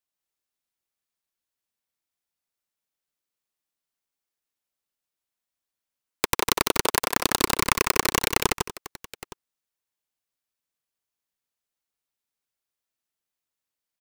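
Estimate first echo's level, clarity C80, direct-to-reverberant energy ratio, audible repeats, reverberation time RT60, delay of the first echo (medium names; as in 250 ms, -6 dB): -4.0 dB, no reverb, no reverb, 3, no reverb, 153 ms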